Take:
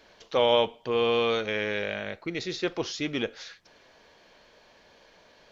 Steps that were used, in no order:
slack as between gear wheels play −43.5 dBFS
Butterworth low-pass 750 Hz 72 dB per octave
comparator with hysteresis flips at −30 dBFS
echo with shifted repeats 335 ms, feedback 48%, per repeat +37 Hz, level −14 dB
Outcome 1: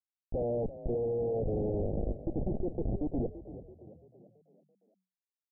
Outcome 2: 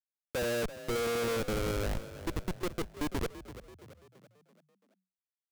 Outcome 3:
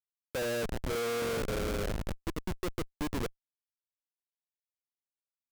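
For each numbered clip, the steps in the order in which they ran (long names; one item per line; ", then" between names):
slack as between gear wheels, then comparator with hysteresis, then echo with shifted repeats, then Butterworth low-pass
Butterworth low-pass, then slack as between gear wheels, then comparator with hysteresis, then echo with shifted repeats
slack as between gear wheels, then Butterworth low-pass, then echo with shifted repeats, then comparator with hysteresis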